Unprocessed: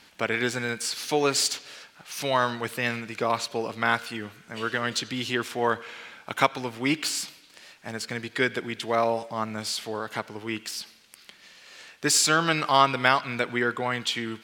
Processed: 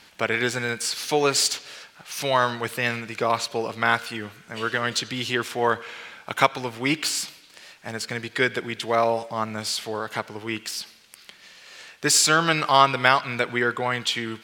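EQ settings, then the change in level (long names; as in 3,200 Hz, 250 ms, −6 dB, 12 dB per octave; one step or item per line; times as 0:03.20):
parametric band 260 Hz −3.5 dB 0.6 octaves
+3.0 dB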